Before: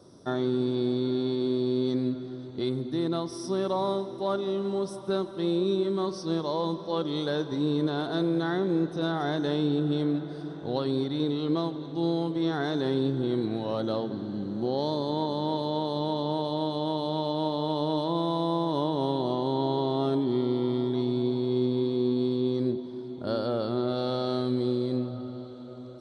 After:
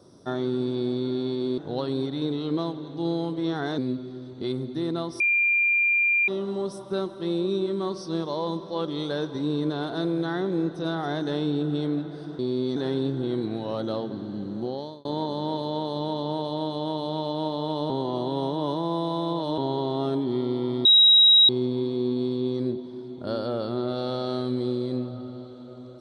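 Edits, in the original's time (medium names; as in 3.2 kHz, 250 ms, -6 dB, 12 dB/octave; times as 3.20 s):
1.58–1.95 s: swap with 10.56–12.76 s
3.37–4.45 s: bleep 2.39 kHz -18.5 dBFS
14.58–15.05 s: fade out
17.90–19.58 s: reverse
20.85–21.49 s: bleep 3.83 kHz -12 dBFS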